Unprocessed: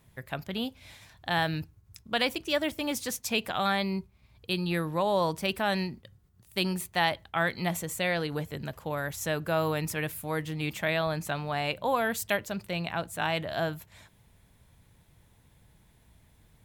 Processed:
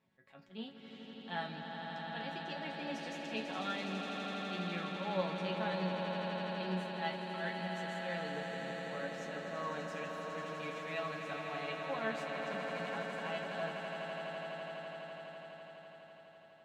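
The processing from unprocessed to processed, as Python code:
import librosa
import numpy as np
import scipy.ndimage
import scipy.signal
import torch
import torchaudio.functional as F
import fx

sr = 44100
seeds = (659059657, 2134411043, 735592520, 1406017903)

y = scipy.signal.sosfilt(scipy.signal.butter(2, 160.0, 'highpass', fs=sr, output='sos'), x)
y = fx.auto_swell(y, sr, attack_ms=102.0)
y = fx.air_absorb(y, sr, metres=140.0)
y = fx.resonator_bank(y, sr, root=54, chord='minor', decay_s=0.2)
y = fx.echo_swell(y, sr, ms=83, loudest=8, wet_db=-8.5)
y = y * 10.0 ** (3.5 / 20.0)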